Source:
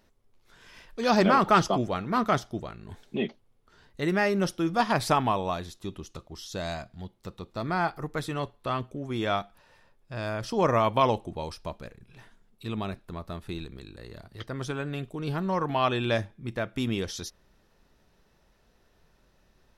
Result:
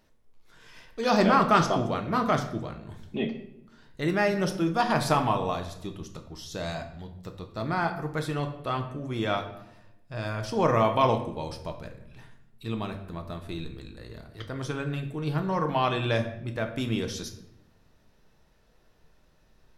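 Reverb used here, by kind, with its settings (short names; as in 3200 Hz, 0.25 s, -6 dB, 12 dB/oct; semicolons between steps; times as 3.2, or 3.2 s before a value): shoebox room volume 210 m³, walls mixed, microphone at 0.54 m; gain -1 dB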